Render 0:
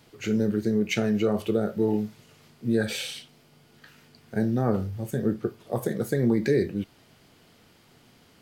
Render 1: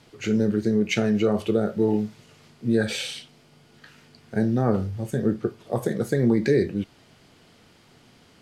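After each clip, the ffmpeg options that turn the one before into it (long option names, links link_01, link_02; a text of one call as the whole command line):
ffmpeg -i in.wav -af "lowpass=9800,volume=2.5dB" out.wav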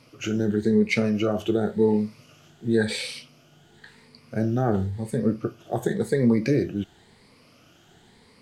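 ffmpeg -i in.wav -af "afftfilt=real='re*pow(10,10/40*sin(2*PI*(0.93*log(max(b,1)*sr/1024/100)/log(2)-(0.94)*(pts-256)/sr)))':imag='im*pow(10,10/40*sin(2*PI*(0.93*log(max(b,1)*sr/1024/100)/log(2)-(0.94)*(pts-256)/sr)))':win_size=1024:overlap=0.75,volume=-1.5dB" out.wav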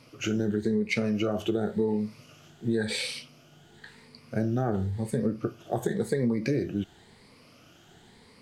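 ffmpeg -i in.wav -af "acompressor=threshold=-23dB:ratio=6" out.wav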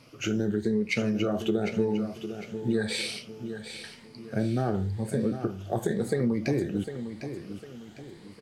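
ffmpeg -i in.wav -af "aecho=1:1:753|1506|2259|3012:0.316|0.12|0.0457|0.0174" out.wav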